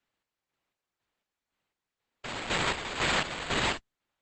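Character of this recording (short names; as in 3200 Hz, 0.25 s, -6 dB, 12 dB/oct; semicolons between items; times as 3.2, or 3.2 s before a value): aliases and images of a low sample rate 5800 Hz, jitter 0%; chopped level 2 Hz, depth 65%, duty 45%; Opus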